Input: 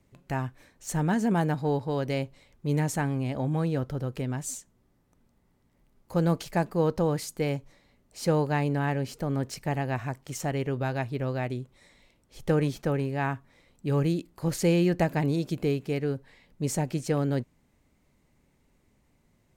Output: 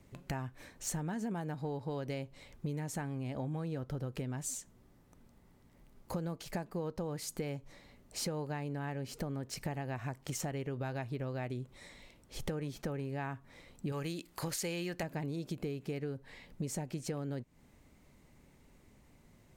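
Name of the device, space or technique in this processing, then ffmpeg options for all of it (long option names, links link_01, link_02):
serial compression, leveller first: -filter_complex "[0:a]asettb=1/sr,asplit=3[link_01][link_02][link_03];[link_01]atrim=end=13.924[link_04];[link_02]atrim=start=13.92:end=15.03,asetpts=PTS-STARTPTS,afade=type=in:duration=0.004:curve=qsin,afade=type=out:start_time=1.106:duration=0.004:curve=qsin,tiltshelf=frequency=720:gain=-6.5[link_05];[link_03]atrim=start=15.026[link_06];[link_04][link_05]acrossfade=duration=0.004:curve1=hsin:curve2=qsin[link_07];[link_07][link_06]acrossfade=duration=0.004:curve1=qsin:curve2=hsin,acompressor=threshold=-35dB:ratio=1.5,acompressor=threshold=-40dB:ratio=6,volume=4.5dB"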